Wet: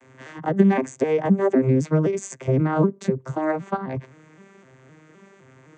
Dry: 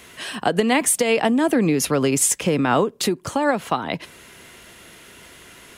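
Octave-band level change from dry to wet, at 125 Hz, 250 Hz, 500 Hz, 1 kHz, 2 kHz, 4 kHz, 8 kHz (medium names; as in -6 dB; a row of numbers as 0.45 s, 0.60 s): +6.0 dB, -0.5 dB, -1.0 dB, -5.5 dB, -9.0 dB, under -20 dB, -19.0 dB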